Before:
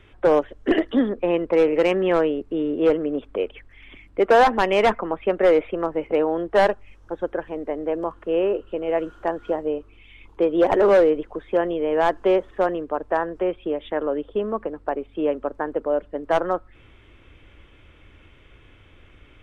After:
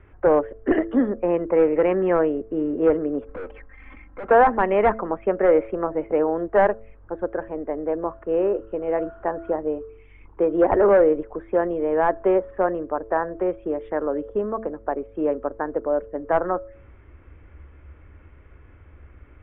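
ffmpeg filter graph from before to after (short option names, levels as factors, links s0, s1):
-filter_complex "[0:a]asettb=1/sr,asplit=3[s0][s1][s2];[s0]atrim=end=3.274[s3];[s1]atrim=start=3.27:end=4.31,asetpts=PTS-STARTPTS,afade=t=in:d=0.004:c=qsin,afade=t=out:st=1.036:d=0.004:c=qsin,equalizer=f=1100:t=o:w=2:g=7.5,aecho=1:1:3.8:0.96,atrim=end_sample=45864,aeval=exprs='(tanh(35.5*val(0)+0.45)-tanh(0.45))/35.5':c=same[s4];[s2]atrim=start=4.306[s5];[s3][s4]acrossfade=d=0.004:c1=hsin:c2=qsin[s6];[s6][s5]acrossfade=d=0.004:c1=qsin:c2=hsin,lowpass=f=1900:w=0.5412,lowpass=f=1900:w=1.3066,equalizer=f=70:w=3.6:g=13,bandreject=f=111:t=h:w=4,bandreject=f=222:t=h:w=4,bandreject=f=333:t=h:w=4,bandreject=f=444:t=h:w=4,bandreject=f=555:t=h:w=4,bandreject=f=666:t=h:w=4"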